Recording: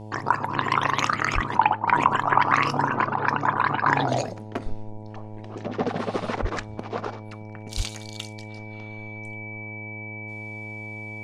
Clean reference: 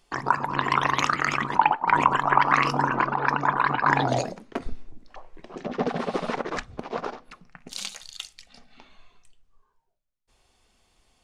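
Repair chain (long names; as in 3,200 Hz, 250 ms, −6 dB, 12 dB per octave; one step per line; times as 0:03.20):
hum removal 107.2 Hz, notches 9
notch filter 2,300 Hz, Q 30
0:01.34–0:01.46: high-pass filter 140 Hz 24 dB per octave
0:06.41–0:06.53: high-pass filter 140 Hz 24 dB per octave
0:07.76–0:07.88: high-pass filter 140 Hz 24 dB per octave
0:09.22: level correction −3 dB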